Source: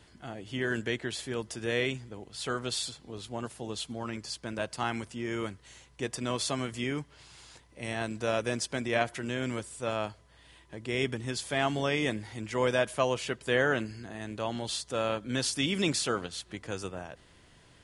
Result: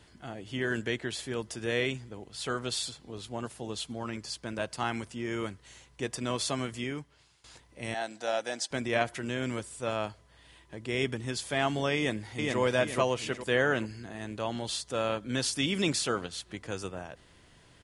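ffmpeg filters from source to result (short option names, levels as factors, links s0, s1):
-filter_complex "[0:a]asettb=1/sr,asplit=3[s0][s1][s2];[s0]atrim=end=7.944[s3];[s1]atrim=start=7.94:end=8.71,asetpts=PTS-STARTPTS,afade=t=in:d=0.004:c=qsin,afade=t=out:st=0.766:d=0.004:c=qsin,highpass=390,equalizer=f=410:t=q:w=4:g=-10,equalizer=f=780:t=q:w=4:g=8,equalizer=f=1100:t=q:w=4:g=-9,equalizer=f=2500:t=q:w=4:g=-5,equalizer=f=4000:t=q:w=4:g=3,lowpass=f=9200:w=0.5412,lowpass=f=9200:w=1.3066[s4];[s2]atrim=start=8.706[s5];[s3][s4]acrossfade=d=0.004:c1=hsin:c2=qsin[s6];[s6][s5]acrossfade=d=0.004:c1=qsin:c2=hsin,asplit=2[s7][s8];[s8]afade=t=in:st=11.96:d=0.01,afade=t=out:st=12.59:d=0.01,aecho=0:1:420|840|1260|1680|2100:0.794328|0.317731|0.127093|0.050837|0.0203348[s9];[s7][s9]amix=inputs=2:normalize=0,asplit=2[s10][s11];[s10]atrim=end=7.44,asetpts=PTS-STARTPTS,afade=t=out:st=6.65:d=0.79:silence=0.105925[s12];[s11]atrim=start=7.44,asetpts=PTS-STARTPTS,afade=t=in:d=0.004:c=hsin:silence=0.105925[s13];[s12][s13]concat=n=2:v=0:a=1"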